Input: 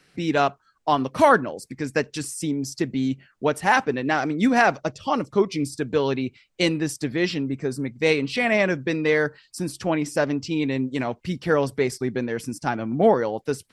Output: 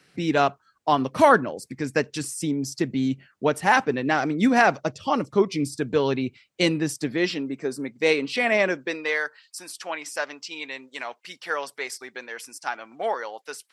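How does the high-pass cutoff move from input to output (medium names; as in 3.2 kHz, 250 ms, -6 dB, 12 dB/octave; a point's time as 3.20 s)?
6.79 s 78 Hz
7.36 s 270 Hz
8.66 s 270 Hz
9.22 s 940 Hz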